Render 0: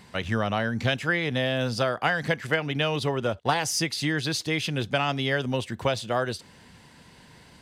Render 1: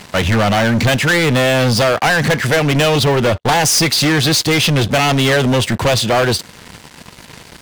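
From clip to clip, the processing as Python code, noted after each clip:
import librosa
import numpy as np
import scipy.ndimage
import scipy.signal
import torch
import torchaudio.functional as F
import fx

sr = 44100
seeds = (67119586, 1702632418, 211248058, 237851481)

y = fx.leveller(x, sr, passes=5)
y = y * 10.0 ** (2.0 / 20.0)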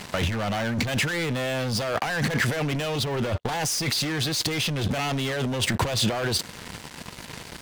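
y = fx.over_compress(x, sr, threshold_db=-19.0, ratio=-1.0)
y = y * 10.0 ** (-7.0 / 20.0)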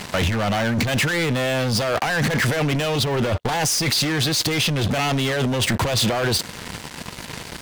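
y = np.clip(10.0 ** (22.0 / 20.0) * x, -1.0, 1.0) / 10.0 ** (22.0 / 20.0)
y = y * 10.0 ** (5.5 / 20.0)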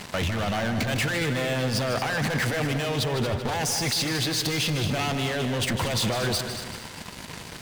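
y = fx.echo_heads(x, sr, ms=77, heads='second and third', feedback_pct=45, wet_db=-10)
y = y * 10.0 ** (-6.0 / 20.0)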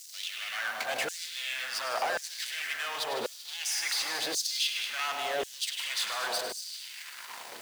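y = fx.quant_dither(x, sr, seeds[0], bits=8, dither='triangular')
y = fx.echo_split(y, sr, split_hz=350.0, low_ms=625, high_ms=101, feedback_pct=52, wet_db=-9.5)
y = fx.filter_lfo_highpass(y, sr, shape='saw_down', hz=0.92, low_hz=480.0, high_hz=6900.0, q=1.9)
y = y * 10.0 ** (-5.5 / 20.0)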